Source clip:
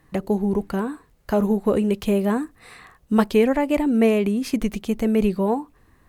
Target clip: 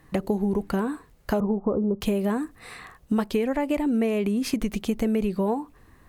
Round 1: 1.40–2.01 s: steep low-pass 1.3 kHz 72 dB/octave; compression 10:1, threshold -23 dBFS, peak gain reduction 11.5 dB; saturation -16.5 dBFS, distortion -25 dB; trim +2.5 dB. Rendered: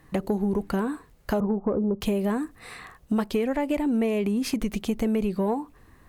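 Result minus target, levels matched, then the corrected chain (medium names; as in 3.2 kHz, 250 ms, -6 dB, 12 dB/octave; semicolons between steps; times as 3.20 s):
saturation: distortion +20 dB
1.40–2.01 s: steep low-pass 1.3 kHz 72 dB/octave; compression 10:1, threshold -23 dBFS, peak gain reduction 11.5 dB; saturation -5.5 dBFS, distortion -45 dB; trim +2.5 dB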